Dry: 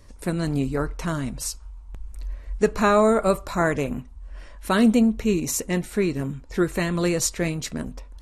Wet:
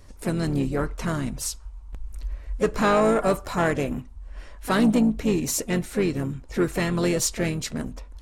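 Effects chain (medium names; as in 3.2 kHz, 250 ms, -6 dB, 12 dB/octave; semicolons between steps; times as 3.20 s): harmony voices -5 st -12 dB, +4 st -12 dB; saturation -13 dBFS, distortion -16 dB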